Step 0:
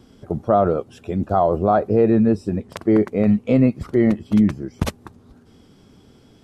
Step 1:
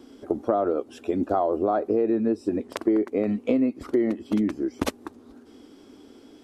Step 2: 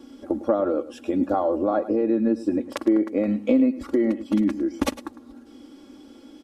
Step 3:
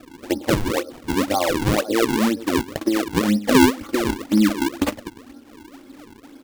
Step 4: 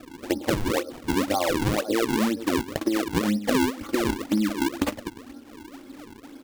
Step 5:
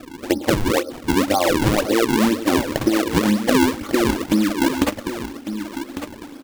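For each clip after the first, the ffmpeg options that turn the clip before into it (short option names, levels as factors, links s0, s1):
-af "lowshelf=f=210:t=q:w=3:g=-10,acompressor=threshold=0.1:ratio=5"
-af "aecho=1:1:3.6:0.65,aecho=1:1:105:0.168"
-af "flanger=delay=9.4:depth=2:regen=35:speed=1.8:shape=sinusoidal,acrusher=samples=41:mix=1:aa=0.000001:lfo=1:lforange=65.6:lforate=2,volume=2"
-af "acompressor=threshold=0.1:ratio=6"
-af "aecho=1:1:1151:0.299,volume=2"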